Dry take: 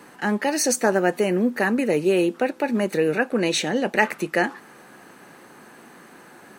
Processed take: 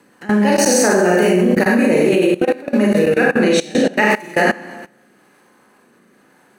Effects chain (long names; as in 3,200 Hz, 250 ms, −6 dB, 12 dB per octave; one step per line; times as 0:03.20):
rotating-speaker cabinet horn 5.5 Hz, later 0.85 Hz, at 0:02.33
four-comb reverb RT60 1 s, combs from 30 ms, DRR −4.5 dB
output level in coarse steps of 20 dB
level +7 dB